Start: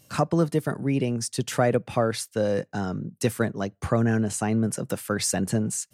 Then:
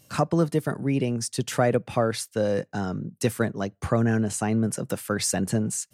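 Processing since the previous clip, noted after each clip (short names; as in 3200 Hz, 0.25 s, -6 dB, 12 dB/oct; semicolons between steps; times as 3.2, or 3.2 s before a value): nothing audible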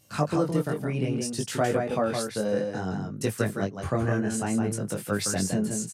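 on a send: echo 0.164 s -5 dB; on the sum: chorus 0.6 Hz, delay 19 ms, depth 4.8 ms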